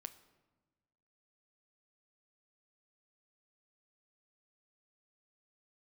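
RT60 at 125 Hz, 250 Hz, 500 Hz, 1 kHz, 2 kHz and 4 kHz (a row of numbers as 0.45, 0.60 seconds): 1.7, 1.6, 1.3, 1.2, 0.95, 0.75 seconds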